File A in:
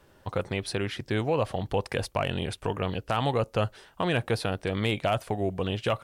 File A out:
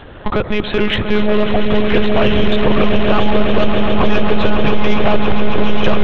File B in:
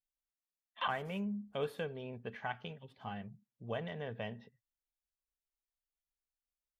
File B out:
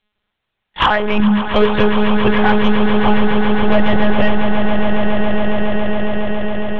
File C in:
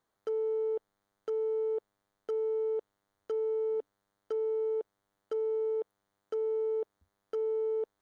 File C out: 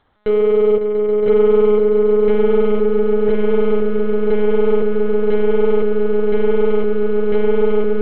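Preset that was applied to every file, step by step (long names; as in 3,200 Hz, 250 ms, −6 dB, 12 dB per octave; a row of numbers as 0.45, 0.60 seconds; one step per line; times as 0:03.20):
downward compressor 3 to 1, threshold −33 dBFS
gain into a clipping stage and back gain 32 dB
one-pitch LPC vocoder at 8 kHz 210 Hz
on a send: echo that builds up and dies away 138 ms, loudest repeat 8, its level −10.5 dB
on the sum: soft clipping −25.5 dBFS
loudness normalisation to −16 LKFS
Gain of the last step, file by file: +23.0, +26.0, +21.5 decibels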